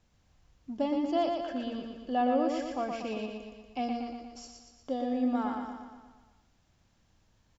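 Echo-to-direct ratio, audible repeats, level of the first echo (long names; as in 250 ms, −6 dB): −3.0 dB, 7, −4.5 dB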